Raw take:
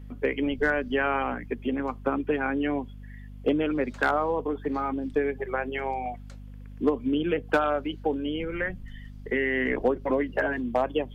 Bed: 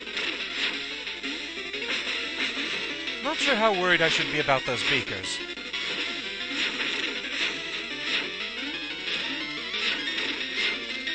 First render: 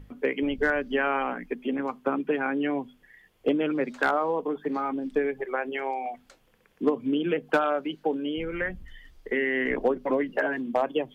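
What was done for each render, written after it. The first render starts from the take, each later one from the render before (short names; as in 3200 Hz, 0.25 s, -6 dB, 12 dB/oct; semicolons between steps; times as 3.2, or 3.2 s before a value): notches 50/100/150/200/250 Hz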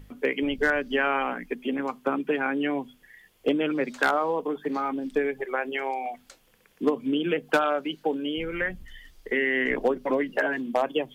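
high shelf 3100 Hz +9.5 dB; notches 60/120 Hz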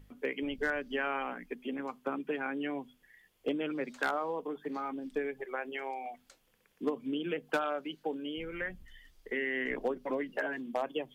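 gain -9 dB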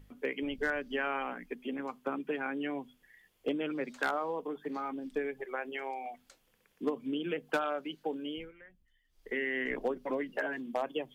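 8.33–9.29 dip -18.5 dB, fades 0.21 s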